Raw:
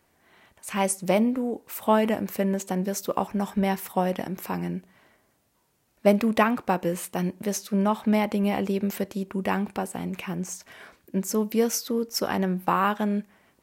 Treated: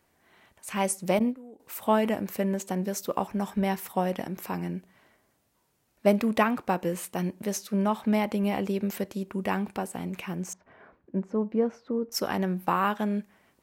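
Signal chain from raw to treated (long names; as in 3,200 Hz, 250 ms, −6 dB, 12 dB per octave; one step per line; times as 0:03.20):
0:01.19–0:01.60: noise gate −23 dBFS, range −16 dB
0:10.53–0:12.12: low-pass filter 1,200 Hz 12 dB per octave
level −2.5 dB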